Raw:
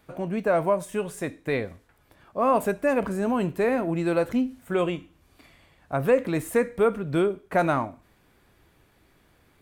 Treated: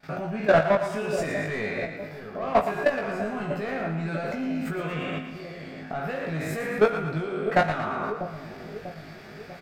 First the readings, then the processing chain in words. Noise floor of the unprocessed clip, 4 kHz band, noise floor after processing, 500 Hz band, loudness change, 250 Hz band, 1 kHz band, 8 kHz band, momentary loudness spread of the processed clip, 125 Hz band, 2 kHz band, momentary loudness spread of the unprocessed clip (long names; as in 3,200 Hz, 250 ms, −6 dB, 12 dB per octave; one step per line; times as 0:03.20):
−62 dBFS, +3.5 dB, −43 dBFS, −1.5 dB, −1.5 dB, −3.5 dB, +0.5 dB, −4.0 dB, 16 LU, +0.5 dB, +3.5 dB, 9 LU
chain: peak hold with a decay on every bin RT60 0.80 s
thirty-one-band graphic EQ 160 Hz +10 dB, 315 Hz −8 dB, 500 Hz −9 dB, 1,000 Hz −12 dB, 3,150 Hz −4 dB, 5,000 Hz +9 dB, 10,000 Hz −9 dB
in parallel at +1.5 dB: downward compressor 4 to 1, threshold −35 dBFS, peak gain reduction 15 dB
on the sum: mid-hump overdrive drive 20 dB, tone 1,400 Hz, clips at −8.5 dBFS
pitch vibrato 1.2 Hz 24 cents
output level in coarse steps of 16 dB
double-tracking delay 19 ms −4.5 dB
on a send: echo with a time of its own for lows and highs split 660 Hz, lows 644 ms, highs 115 ms, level −9 dB